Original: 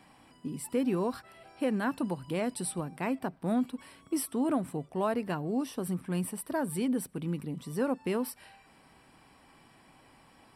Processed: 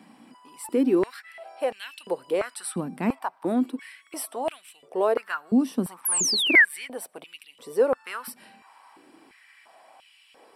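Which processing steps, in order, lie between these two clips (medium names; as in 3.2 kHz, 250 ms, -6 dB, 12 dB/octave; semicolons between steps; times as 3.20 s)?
painted sound fall, 6.05–6.65 s, 1.6–12 kHz -26 dBFS; step-sequenced high-pass 2.9 Hz 220–2800 Hz; trim +2 dB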